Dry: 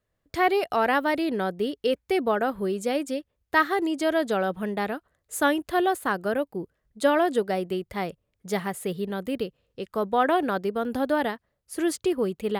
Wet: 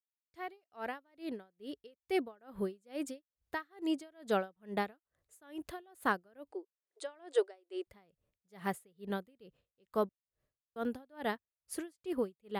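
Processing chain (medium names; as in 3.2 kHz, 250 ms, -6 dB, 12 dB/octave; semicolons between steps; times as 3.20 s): fade-in on the opening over 2.74 s; 6.51–7.87 s: brick-wall FIR band-pass 300–9800 Hz; 10.09–10.76 s: room tone; logarithmic tremolo 2.3 Hz, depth 35 dB; trim -4 dB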